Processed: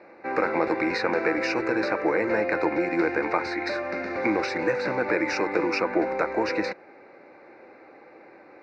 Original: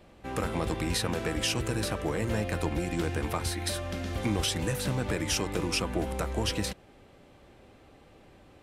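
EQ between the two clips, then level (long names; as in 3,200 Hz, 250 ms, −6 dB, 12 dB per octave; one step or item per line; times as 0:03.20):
Butterworth band-reject 3,200 Hz, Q 1.8
high-frequency loss of the air 70 metres
loudspeaker in its box 320–4,600 Hz, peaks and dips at 330 Hz +7 dB, 510 Hz +6 dB, 860 Hz +6 dB, 1,500 Hz +7 dB, 2,200 Hz +9 dB, 3,300 Hz +3 dB
+4.5 dB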